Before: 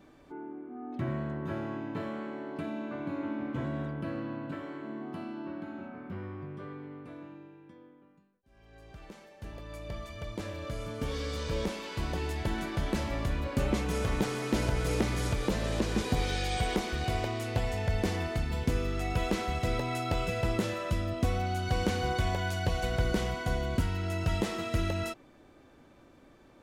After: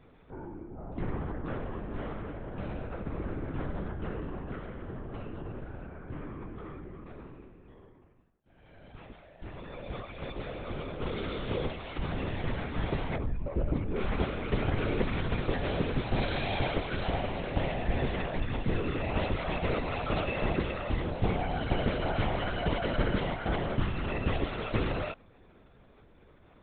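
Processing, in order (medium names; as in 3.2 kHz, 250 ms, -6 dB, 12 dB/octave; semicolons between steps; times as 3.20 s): 13.16–13.97 s: spectral contrast enhancement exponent 1.7; LPC vocoder at 8 kHz whisper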